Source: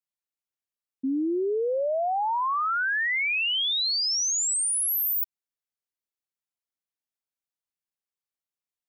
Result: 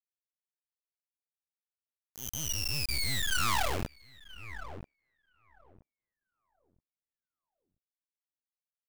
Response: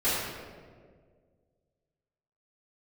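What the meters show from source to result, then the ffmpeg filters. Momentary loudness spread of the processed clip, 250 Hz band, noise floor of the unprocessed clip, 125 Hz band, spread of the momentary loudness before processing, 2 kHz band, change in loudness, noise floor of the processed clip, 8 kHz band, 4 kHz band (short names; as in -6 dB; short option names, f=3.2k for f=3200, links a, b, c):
19 LU, -15.0 dB, under -85 dBFS, n/a, 5 LU, -10.5 dB, -7.5 dB, under -85 dBFS, -12.0 dB, -9.5 dB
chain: -filter_complex "[0:a]aderivative,lowpass=f=3.4k:t=q:w=0.5098,lowpass=f=3.4k:t=q:w=0.6013,lowpass=f=3.4k:t=q:w=0.9,lowpass=f=3.4k:t=q:w=2.563,afreqshift=-4000,flanger=delay=18.5:depth=5.3:speed=2.8,acrusher=bits=6:mix=0:aa=0.000001,asplit=2[a][b];[b]adelay=979,lowpass=f=810:p=1,volume=-10dB,asplit=2[c][d];[d]adelay=979,lowpass=f=810:p=1,volume=0.38,asplit=2[e][f];[f]adelay=979,lowpass=f=810:p=1,volume=0.38,asplit=2[g][h];[h]adelay=979,lowpass=f=810:p=1,volume=0.38[i];[a][c][e][g][i]amix=inputs=5:normalize=0,aeval=exprs='0.0335*(cos(1*acos(clip(val(0)/0.0335,-1,1)))-cos(1*PI/2))+0.00841*(cos(3*acos(clip(val(0)/0.0335,-1,1)))-cos(3*PI/2))+0.0119*(cos(8*acos(clip(val(0)/0.0335,-1,1)))-cos(8*PI/2))':c=same,volume=6.5dB"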